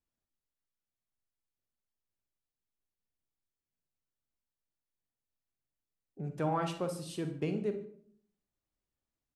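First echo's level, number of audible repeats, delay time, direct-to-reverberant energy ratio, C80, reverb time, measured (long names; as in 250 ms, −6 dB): −20.5 dB, 1, 147 ms, 7.0 dB, 13.0 dB, 0.55 s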